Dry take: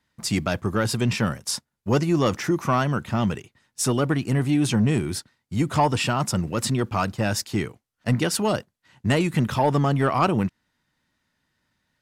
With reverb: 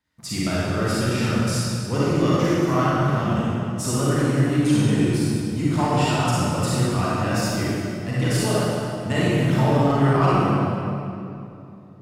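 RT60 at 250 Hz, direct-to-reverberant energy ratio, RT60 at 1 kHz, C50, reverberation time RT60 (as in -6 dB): 3.4 s, -8.5 dB, 2.6 s, -6.0 dB, 2.8 s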